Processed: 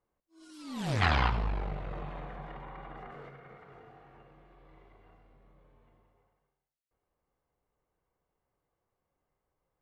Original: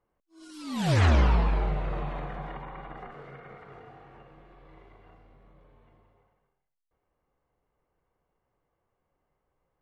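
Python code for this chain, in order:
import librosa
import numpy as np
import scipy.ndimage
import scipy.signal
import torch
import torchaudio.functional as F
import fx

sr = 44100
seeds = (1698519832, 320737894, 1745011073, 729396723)

y = fx.diode_clip(x, sr, knee_db=-29.0)
y = fx.spec_box(y, sr, start_s=1.02, length_s=0.27, low_hz=690.0, high_hz=5200.0, gain_db=10)
y = y + 10.0 ** (-14.5 / 20.0) * np.pad(y, (int(95 * sr / 1000.0), 0))[:len(y)]
y = fx.env_flatten(y, sr, amount_pct=50, at=(2.5, 3.29))
y = y * librosa.db_to_amplitude(-5.0)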